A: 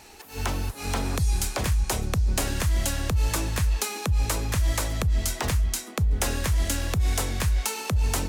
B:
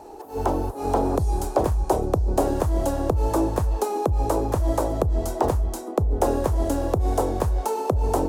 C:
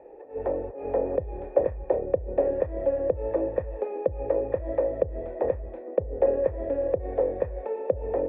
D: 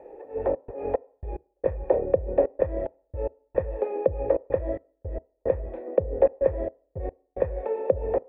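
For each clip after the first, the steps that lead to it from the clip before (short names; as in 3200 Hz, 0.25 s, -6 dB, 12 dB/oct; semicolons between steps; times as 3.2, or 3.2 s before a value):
EQ curve 210 Hz 0 dB, 320 Hz +13 dB, 840 Hz +11 dB, 2100 Hz -14 dB, 11000 Hz -7 dB
vocal tract filter e; gain +6.5 dB
step gate "xxxx.xx..x..xx" 110 bpm -60 dB; on a send at -23 dB: reverb RT60 0.55 s, pre-delay 3 ms; on the sum: gain +2.5 dB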